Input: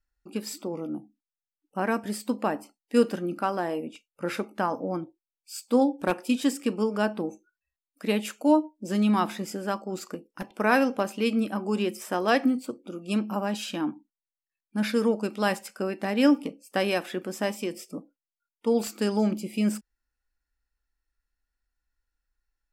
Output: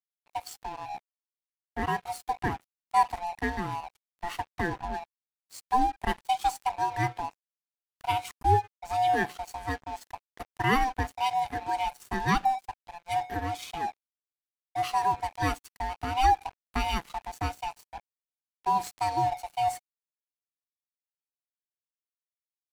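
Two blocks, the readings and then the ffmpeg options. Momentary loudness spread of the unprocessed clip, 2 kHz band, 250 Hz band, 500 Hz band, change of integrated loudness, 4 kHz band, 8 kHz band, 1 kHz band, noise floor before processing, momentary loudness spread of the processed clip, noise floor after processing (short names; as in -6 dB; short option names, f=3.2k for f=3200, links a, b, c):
13 LU, -1.5 dB, -13.0 dB, -10.0 dB, -2.5 dB, -2.0 dB, -4.0 dB, +6.0 dB, under -85 dBFS, 15 LU, under -85 dBFS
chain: -af "afftfilt=real='real(if(lt(b,1008),b+24*(1-2*mod(floor(b/24),2)),b),0)':imag='imag(if(lt(b,1008),b+24*(1-2*mod(floor(b/24),2)),b),0)':win_size=2048:overlap=0.75,aeval=exprs='sgn(val(0))*max(abs(val(0))-0.01,0)':c=same,volume=-1.5dB"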